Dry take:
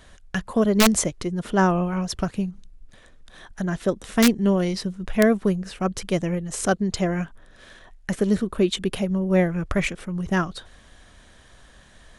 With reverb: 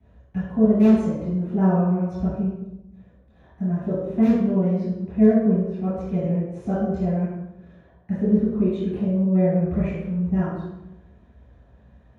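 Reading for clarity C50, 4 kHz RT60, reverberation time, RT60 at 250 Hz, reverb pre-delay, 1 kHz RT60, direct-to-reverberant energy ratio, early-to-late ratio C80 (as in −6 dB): −2.0 dB, 0.70 s, 0.90 s, 1.1 s, 3 ms, 0.85 s, −17.0 dB, 1.0 dB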